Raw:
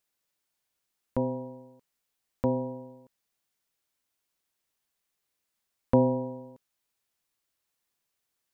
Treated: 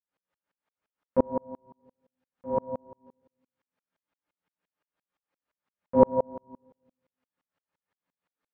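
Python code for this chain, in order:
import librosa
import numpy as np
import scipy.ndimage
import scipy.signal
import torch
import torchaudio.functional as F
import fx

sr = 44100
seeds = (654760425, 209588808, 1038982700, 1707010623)

p1 = scipy.signal.sosfilt(scipy.signal.butter(2, 1700.0, 'lowpass', fs=sr, output='sos'), x)
p2 = fx.low_shelf(p1, sr, hz=180.0, db=-10.0)
p3 = p2 + fx.echo_single(p2, sr, ms=185, db=-18.0, dry=0)
p4 = fx.rev_fdn(p3, sr, rt60_s=0.82, lf_ratio=1.25, hf_ratio=0.85, size_ms=33.0, drr_db=-6.0)
p5 = fx.tremolo_decay(p4, sr, direction='swelling', hz=5.8, depth_db=38)
y = F.gain(torch.from_numpy(p5), 6.0).numpy()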